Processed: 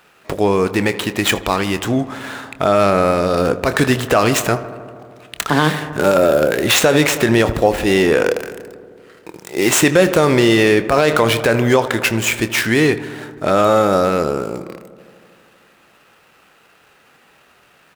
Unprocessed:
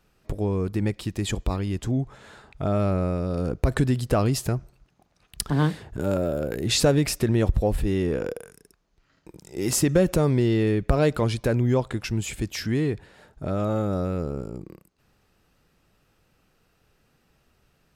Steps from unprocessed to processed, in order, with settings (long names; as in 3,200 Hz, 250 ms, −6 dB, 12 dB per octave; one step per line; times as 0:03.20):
running median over 9 samples
high-pass filter 1,300 Hz 6 dB per octave
double-tracking delay 26 ms −14 dB
feedback echo with a low-pass in the loop 79 ms, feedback 81%, low-pass 2,800 Hz, level −17 dB
boost into a limiter +23.5 dB
level −1 dB